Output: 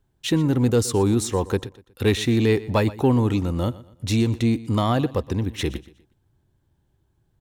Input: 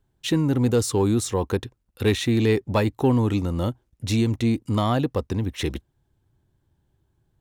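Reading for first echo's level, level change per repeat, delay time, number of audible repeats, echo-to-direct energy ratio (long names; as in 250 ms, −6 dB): −18.5 dB, −9.0 dB, 121 ms, 2, −18.0 dB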